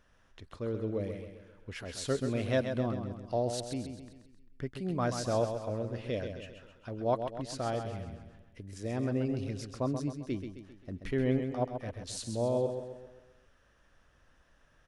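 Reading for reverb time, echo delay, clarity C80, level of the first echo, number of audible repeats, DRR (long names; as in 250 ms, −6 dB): no reverb audible, 132 ms, no reverb audible, −7.5 dB, 5, no reverb audible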